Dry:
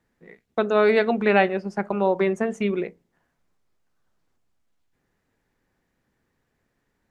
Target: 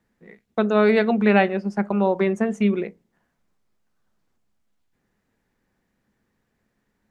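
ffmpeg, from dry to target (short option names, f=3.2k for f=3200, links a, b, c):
-af "equalizer=f=210:t=o:w=0.23:g=8"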